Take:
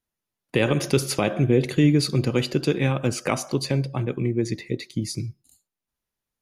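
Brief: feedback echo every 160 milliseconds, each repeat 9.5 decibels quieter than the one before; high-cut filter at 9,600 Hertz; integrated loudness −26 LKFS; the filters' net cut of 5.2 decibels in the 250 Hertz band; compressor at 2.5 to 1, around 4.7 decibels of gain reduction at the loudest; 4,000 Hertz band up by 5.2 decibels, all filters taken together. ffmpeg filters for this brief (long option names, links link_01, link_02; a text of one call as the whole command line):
ffmpeg -i in.wav -af "lowpass=9600,equalizer=frequency=250:width_type=o:gain=-7.5,equalizer=frequency=4000:width_type=o:gain=6.5,acompressor=threshold=-24dB:ratio=2.5,aecho=1:1:160|320|480|640:0.335|0.111|0.0365|0.012,volume=2dB" out.wav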